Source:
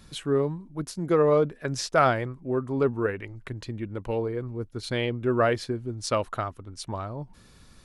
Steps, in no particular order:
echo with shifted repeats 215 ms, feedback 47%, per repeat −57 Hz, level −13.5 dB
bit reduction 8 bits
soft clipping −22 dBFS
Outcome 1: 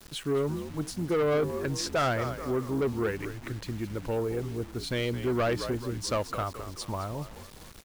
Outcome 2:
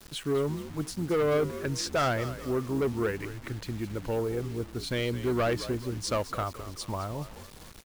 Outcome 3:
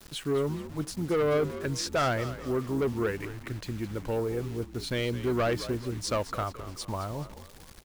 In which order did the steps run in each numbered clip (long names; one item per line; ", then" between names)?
echo with shifted repeats, then bit reduction, then soft clipping
soft clipping, then echo with shifted repeats, then bit reduction
bit reduction, then soft clipping, then echo with shifted repeats